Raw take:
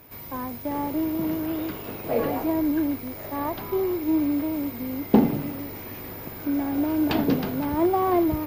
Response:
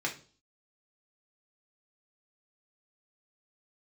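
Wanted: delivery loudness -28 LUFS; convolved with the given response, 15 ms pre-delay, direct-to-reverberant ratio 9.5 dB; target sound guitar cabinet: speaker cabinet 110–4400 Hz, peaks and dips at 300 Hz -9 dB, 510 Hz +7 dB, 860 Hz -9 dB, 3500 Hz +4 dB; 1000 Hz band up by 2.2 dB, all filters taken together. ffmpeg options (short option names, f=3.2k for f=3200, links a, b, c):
-filter_complex "[0:a]equalizer=f=1k:t=o:g=8,asplit=2[a][b];[1:a]atrim=start_sample=2205,adelay=15[c];[b][c]afir=irnorm=-1:irlink=0,volume=-15.5dB[d];[a][d]amix=inputs=2:normalize=0,highpass=110,equalizer=f=300:t=q:w=4:g=-9,equalizer=f=510:t=q:w=4:g=7,equalizer=f=860:t=q:w=4:g=-9,equalizer=f=3.5k:t=q:w=4:g=4,lowpass=f=4.4k:w=0.5412,lowpass=f=4.4k:w=1.3066,volume=-1.5dB"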